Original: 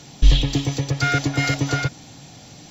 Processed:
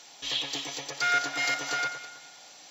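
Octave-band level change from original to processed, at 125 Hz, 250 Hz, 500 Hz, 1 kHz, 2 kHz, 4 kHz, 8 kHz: −32.5 dB, −20.5 dB, −10.0 dB, −3.0 dB, −3.0 dB, −3.5 dB, can't be measured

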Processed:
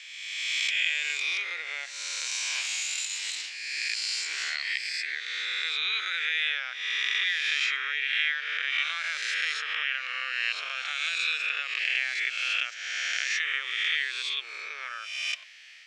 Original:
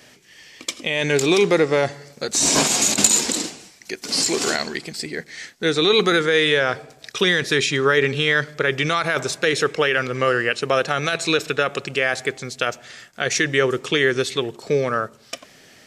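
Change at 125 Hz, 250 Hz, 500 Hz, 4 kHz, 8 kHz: below −40 dB, below −40 dB, −35.5 dB, −5.0 dB, −14.0 dB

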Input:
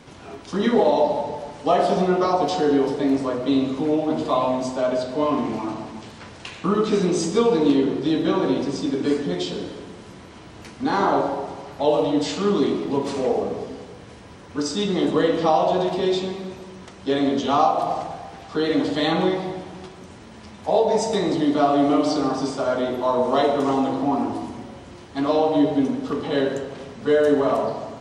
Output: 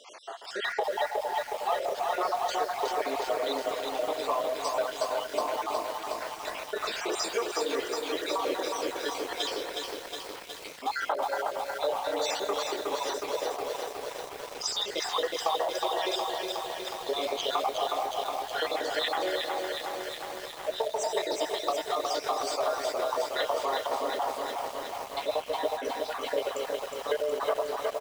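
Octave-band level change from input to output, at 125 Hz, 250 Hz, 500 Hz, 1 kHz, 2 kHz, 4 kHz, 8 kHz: below −25 dB, −21.5 dB, −9.0 dB, −6.0 dB, −1.5 dB, −1.0 dB, 0.0 dB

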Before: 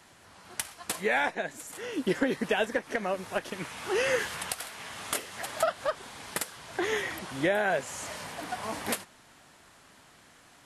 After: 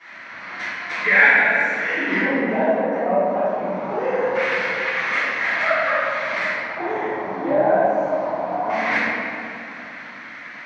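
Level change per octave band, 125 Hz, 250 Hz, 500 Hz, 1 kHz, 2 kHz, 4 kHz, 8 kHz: +6.0 dB, +8.5 dB, +10.5 dB, +12.0 dB, +14.5 dB, +2.5 dB, below −10 dB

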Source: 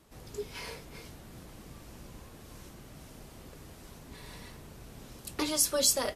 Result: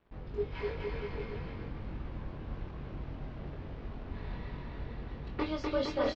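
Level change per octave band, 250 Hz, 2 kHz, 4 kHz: +2.5, −0.5, −11.5 decibels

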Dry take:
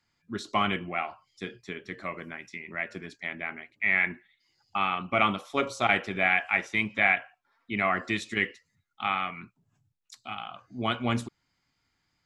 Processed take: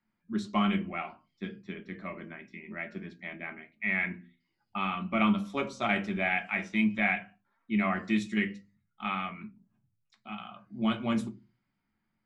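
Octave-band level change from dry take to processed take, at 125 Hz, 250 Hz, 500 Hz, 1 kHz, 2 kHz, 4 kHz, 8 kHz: +0.5 dB, +5.0 dB, −4.0 dB, −5.0 dB, −5.5 dB, −5.5 dB, can't be measured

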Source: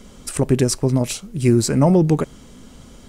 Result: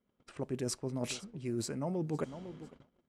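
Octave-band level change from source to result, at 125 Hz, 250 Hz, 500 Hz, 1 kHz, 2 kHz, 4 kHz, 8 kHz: −21.5, −19.5, −18.5, −18.0, −15.0, −14.5, −17.0 decibels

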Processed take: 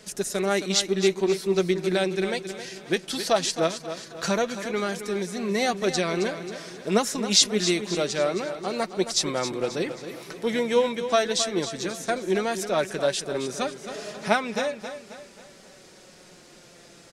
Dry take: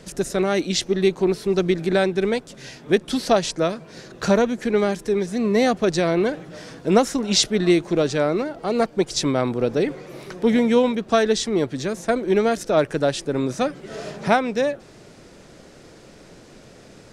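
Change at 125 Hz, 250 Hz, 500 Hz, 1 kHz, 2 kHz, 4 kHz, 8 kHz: −6.5, −7.0, −5.0, −4.0, −2.0, +0.5, +2.0 decibels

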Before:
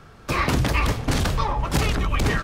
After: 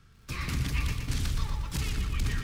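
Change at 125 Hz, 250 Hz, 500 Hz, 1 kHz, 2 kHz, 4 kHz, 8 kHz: −7.5, −12.5, −20.0, −18.5, −12.0, −8.5, −7.5 decibels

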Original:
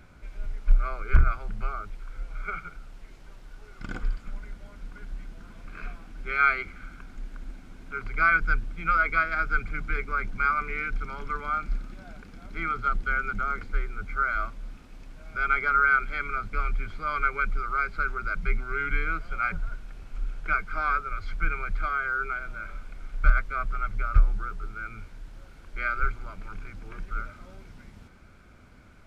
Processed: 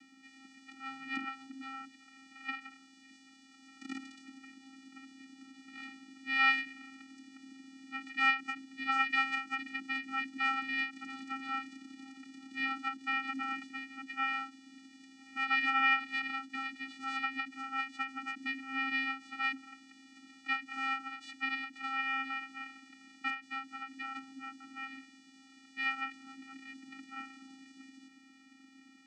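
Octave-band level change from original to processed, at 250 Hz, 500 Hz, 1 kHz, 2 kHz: +0.5 dB, below −25 dB, −8.5 dB, −6.5 dB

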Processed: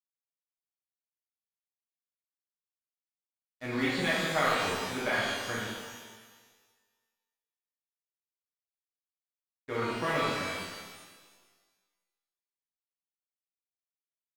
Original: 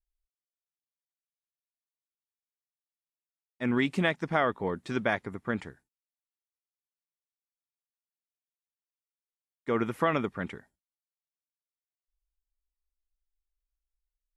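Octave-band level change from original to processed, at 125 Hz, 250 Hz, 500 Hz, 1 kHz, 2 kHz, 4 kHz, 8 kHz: −3.5 dB, −4.5 dB, −2.0 dB, +0.5 dB, +2.0 dB, +7.5 dB, can't be measured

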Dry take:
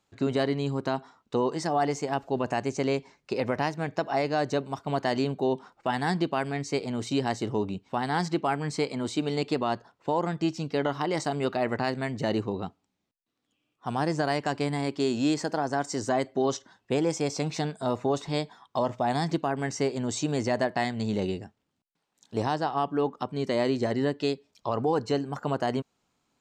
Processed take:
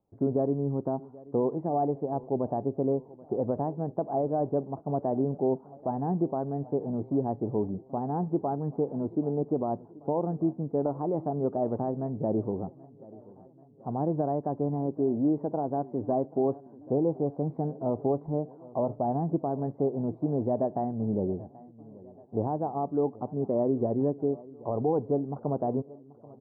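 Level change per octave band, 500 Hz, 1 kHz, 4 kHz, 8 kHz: −0.5 dB, −4.0 dB, below −40 dB, below −40 dB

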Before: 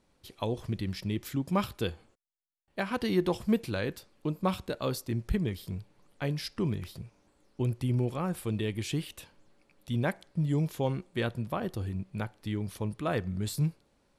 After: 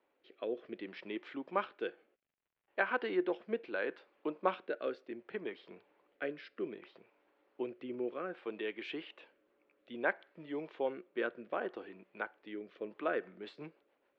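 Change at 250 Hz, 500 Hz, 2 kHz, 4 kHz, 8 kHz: −11.0 dB, −3.0 dB, +1.0 dB, −10.5 dB, below −30 dB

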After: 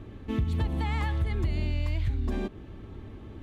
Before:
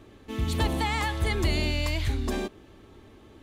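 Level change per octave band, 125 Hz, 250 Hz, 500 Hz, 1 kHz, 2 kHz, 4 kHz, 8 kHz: +1.0, −2.0, −6.0, −7.0, −8.5, −12.0, −17.0 decibels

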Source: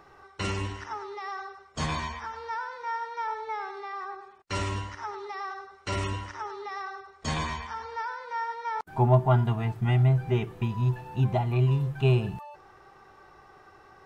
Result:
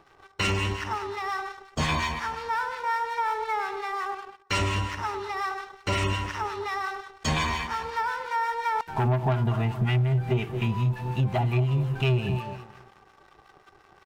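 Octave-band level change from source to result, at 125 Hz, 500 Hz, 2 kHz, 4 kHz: 0.0, 0.0, +6.5, +6.5 decibels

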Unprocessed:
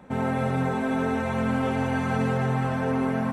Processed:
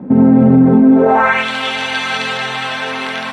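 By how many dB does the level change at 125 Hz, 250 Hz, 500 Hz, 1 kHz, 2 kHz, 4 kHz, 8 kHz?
+7.0, +15.0, +11.0, +11.5, +15.0, +23.0, +13.0 decibels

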